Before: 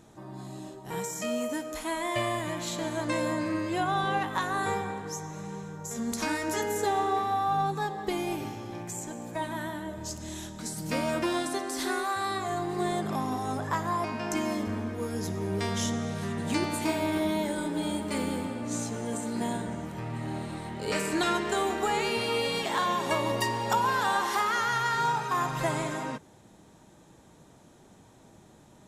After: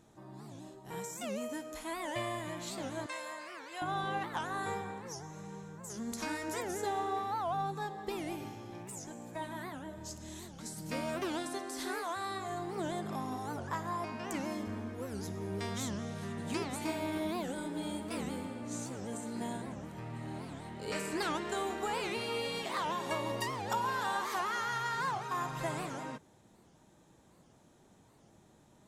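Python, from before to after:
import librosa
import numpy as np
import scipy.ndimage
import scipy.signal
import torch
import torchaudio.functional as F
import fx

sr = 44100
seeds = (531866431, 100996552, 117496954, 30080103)

y = fx.highpass(x, sr, hz=830.0, slope=12, at=(3.06, 3.82))
y = fx.record_warp(y, sr, rpm=78.0, depth_cents=250.0)
y = y * librosa.db_to_amplitude(-7.5)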